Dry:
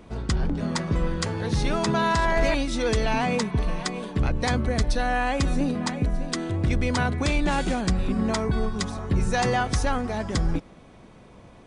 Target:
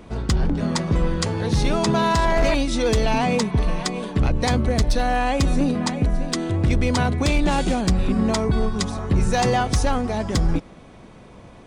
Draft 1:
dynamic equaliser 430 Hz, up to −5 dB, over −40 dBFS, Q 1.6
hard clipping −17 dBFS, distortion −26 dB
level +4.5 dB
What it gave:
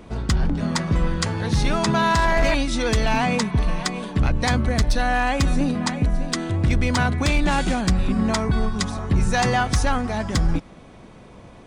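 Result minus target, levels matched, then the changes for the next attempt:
2,000 Hz band +4.0 dB
change: dynamic equaliser 1,600 Hz, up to −5 dB, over −40 dBFS, Q 1.6

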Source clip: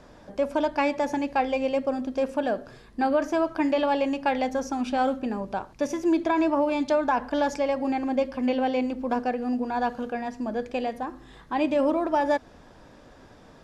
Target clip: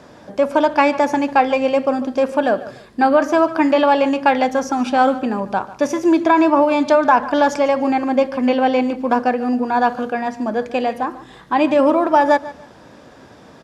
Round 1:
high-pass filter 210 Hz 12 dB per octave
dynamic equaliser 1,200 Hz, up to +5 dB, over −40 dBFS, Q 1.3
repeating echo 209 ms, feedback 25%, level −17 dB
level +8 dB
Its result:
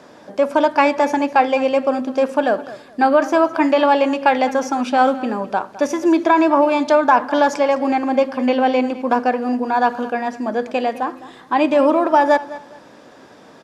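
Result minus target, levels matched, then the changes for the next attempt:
echo 63 ms late; 125 Hz band −4.0 dB
change: high-pass filter 100 Hz 12 dB per octave
change: repeating echo 146 ms, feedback 25%, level −17 dB

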